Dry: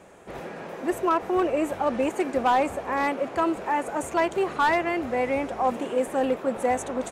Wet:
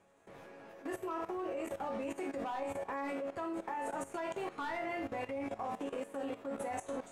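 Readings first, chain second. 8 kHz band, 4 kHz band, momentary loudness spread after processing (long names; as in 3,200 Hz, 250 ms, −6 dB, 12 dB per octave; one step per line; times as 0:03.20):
−13.0 dB, −14.5 dB, 4 LU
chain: resonators tuned to a chord F#2 minor, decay 0.39 s
output level in coarse steps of 15 dB
level +7 dB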